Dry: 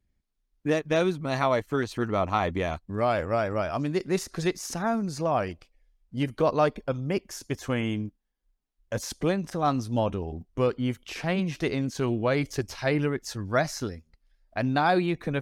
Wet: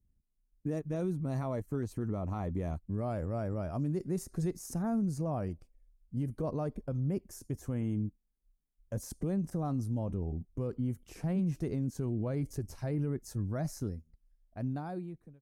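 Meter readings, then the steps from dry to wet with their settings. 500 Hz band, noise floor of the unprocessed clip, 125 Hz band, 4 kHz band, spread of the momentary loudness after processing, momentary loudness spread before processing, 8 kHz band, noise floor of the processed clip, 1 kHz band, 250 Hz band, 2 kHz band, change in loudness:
−12.0 dB, −77 dBFS, −2.5 dB, −20.5 dB, 7 LU, 9 LU, −9.5 dB, −77 dBFS, −16.0 dB, −5.5 dB, −22.0 dB, −8.0 dB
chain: fade-out on the ending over 1.55 s
drawn EQ curve 160 Hz 0 dB, 3,500 Hz −24 dB, 9,200 Hz −5 dB
brickwall limiter −26 dBFS, peak gain reduction 7.5 dB
level +1 dB

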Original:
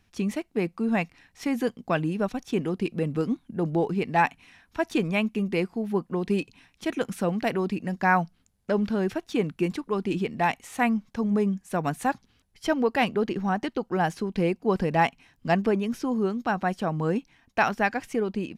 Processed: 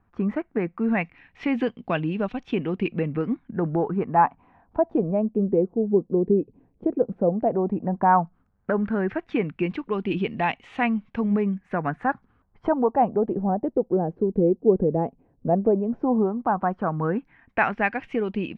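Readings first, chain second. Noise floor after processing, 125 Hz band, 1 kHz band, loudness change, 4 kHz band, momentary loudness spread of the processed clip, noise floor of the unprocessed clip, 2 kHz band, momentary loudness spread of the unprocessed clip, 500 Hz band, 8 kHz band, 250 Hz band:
−65 dBFS, +1.5 dB, +2.5 dB, +2.5 dB, −6.0 dB, 7 LU, −67 dBFS, −1.5 dB, 6 LU, +4.0 dB, below −25 dB, +2.0 dB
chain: camcorder AGC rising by 9.8 dB per second
auto-filter low-pass sine 0.12 Hz 440–3,000 Hz
high-shelf EQ 2,400 Hz −9 dB

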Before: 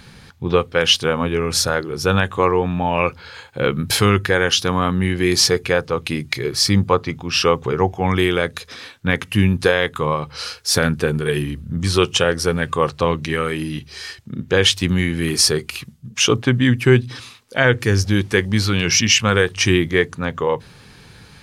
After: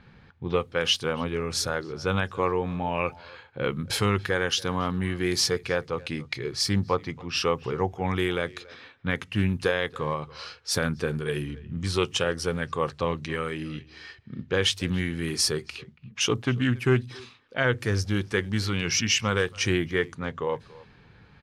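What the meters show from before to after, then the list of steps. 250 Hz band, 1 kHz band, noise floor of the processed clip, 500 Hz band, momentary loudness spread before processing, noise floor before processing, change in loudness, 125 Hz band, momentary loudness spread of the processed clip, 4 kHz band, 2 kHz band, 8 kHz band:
−9.0 dB, −9.0 dB, −55 dBFS, −9.0 dB, 11 LU, −45 dBFS, −9.0 dB, −9.0 dB, 11 LU, −9.0 dB, −9.0 dB, −9.5 dB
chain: far-end echo of a speakerphone 280 ms, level −20 dB
low-pass that shuts in the quiet parts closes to 2,200 Hz, open at −14.5 dBFS
highs frequency-modulated by the lows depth 0.16 ms
level −9 dB

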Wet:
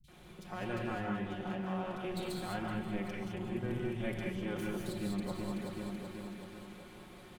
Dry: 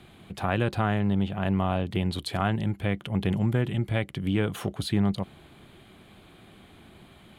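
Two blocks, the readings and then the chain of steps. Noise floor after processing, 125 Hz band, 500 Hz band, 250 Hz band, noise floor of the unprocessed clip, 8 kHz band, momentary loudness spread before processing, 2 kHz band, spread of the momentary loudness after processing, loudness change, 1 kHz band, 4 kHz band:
−54 dBFS, −14.5 dB, −7.5 dB, −9.5 dB, −53 dBFS, −6.5 dB, 5 LU, −8.5 dB, 12 LU, −11.5 dB, −9.5 dB, −11.0 dB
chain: lower of the sound and its delayed copy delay 5.5 ms
on a send: repeating echo 379 ms, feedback 59%, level −13 dB
on the sum: reversed playback
downward compressor 6 to 1, threshold −34 dBFS, peak gain reduction 14 dB
reversed playback
three-band delay without the direct sound lows, highs, mids 40/80 ms, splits 150/3,300 Hz
reverb whose tail is shaped and stops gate 230 ms rising, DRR −0.5 dB
level −2.5 dB

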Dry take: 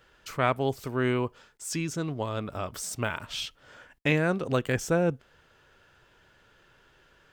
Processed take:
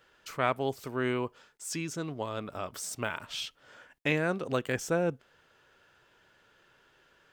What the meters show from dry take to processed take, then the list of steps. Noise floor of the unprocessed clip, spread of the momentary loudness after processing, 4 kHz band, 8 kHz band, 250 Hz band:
−62 dBFS, 10 LU, −2.5 dB, −2.5 dB, −4.5 dB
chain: low-shelf EQ 110 Hz −11.5 dB
level −2.5 dB

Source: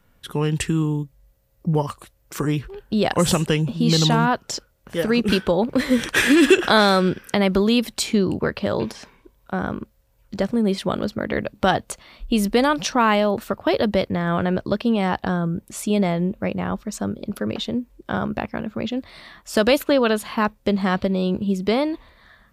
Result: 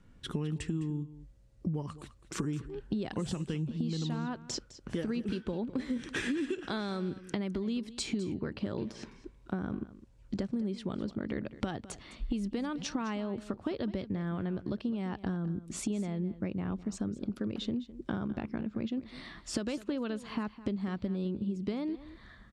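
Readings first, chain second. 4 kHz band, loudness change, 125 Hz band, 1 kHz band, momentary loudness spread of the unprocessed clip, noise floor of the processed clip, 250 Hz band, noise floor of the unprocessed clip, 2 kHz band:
−18.0 dB, −14.5 dB, −12.0 dB, −21.0 dB, 11 LU, −58 dBFS, −12.0 dB, −61 dBFS, −19.5 dB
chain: low-pass filter 8,700 Hz 24 dB per octave
low shelf with overshoot 430 Hz +6.5 dB, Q 1.5
downward compressor 12 to 1, threshold −26 dBFS, peak gain reduction 23 dB
single-tap delay 208 ms −16 dB
level −5 dB

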